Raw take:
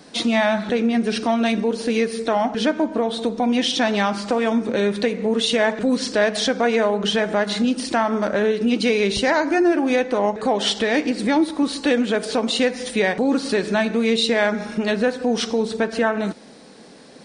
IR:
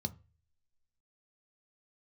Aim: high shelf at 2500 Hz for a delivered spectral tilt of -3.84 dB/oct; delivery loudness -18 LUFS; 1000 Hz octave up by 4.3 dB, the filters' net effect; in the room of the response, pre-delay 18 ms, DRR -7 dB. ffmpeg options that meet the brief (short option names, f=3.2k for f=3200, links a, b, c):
-filter_complex "[0:a]equalizer=f=1k:t=o:g=5,highshelf=f=2.5k:g=5,asplit=2[a][b];[1:a]atrim=start_sample=2205,adelay=18[c];[b][c]afir=irnorm=-1:irlink=0,volume=7.5dB[d];[a][d]amix=inputs=2:normalize=0,volume=-12dB"